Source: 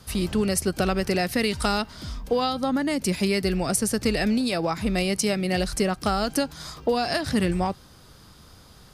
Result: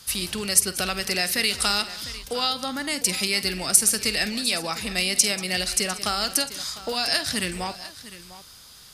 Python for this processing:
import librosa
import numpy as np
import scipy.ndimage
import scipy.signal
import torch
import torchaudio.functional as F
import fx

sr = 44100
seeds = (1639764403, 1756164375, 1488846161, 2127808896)

y = fx.tilt_shelf(x, sr, db=-9.5, hz=1400.0)
y = fx.echo_multitap(y, sr, ms=(49, 187, 702), db=(-15.0, -17.5, -16.0))